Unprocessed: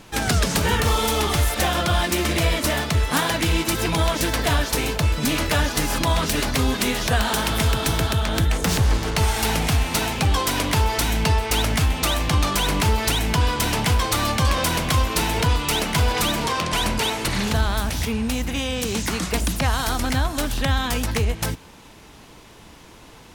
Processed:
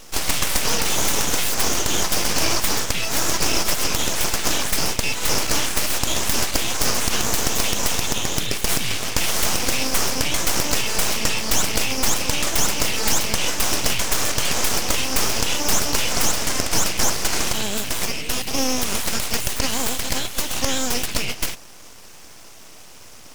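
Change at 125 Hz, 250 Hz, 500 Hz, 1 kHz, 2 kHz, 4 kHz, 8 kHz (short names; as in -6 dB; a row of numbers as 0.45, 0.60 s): -10.0, -4.5, -2.5, -3.5, -0.5, +2.0, +7.0 dB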